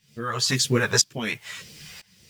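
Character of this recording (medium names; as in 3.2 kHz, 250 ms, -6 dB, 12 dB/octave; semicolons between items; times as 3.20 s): phasing stages 2, 1.9 Hz, lowest notch 270–1100 Hz; a quantiser's noise floor 10-bit, dither none; tremolo saw up 1 Hz, depth 95%; a shimmering, thickened sound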